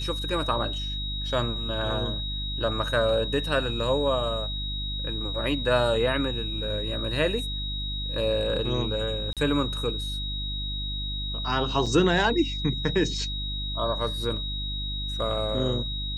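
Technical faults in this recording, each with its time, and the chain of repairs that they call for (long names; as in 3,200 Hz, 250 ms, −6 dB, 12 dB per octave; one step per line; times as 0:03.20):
mains hum 50 Hz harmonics 6 −33 dBFS
whistle 3,800 Hz −32 dBFS
0:09.33–0:09.37: drop-out 37 ms
0:11.86: drop-out 4.7 ms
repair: hum removal 50 Hz, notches 6
notch filter 3,800 Hz, Q 30
repair the gap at 0:09.33, 37 ms
repair the gap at 0:11.86, 4.7 ms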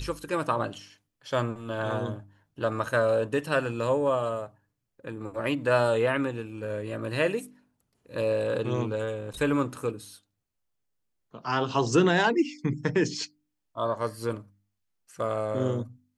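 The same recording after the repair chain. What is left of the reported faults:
none of them is left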